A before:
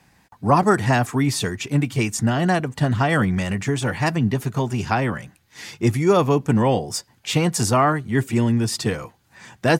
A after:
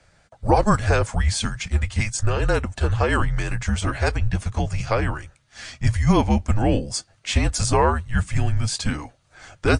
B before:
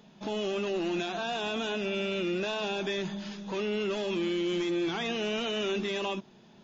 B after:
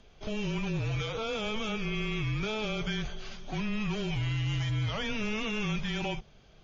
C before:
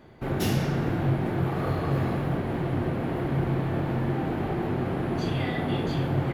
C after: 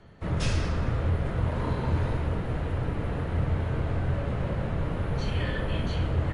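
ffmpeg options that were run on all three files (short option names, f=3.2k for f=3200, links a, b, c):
-af "afreqshift=-220" -ar 22050 -c:a libmp3lame -b:a 48k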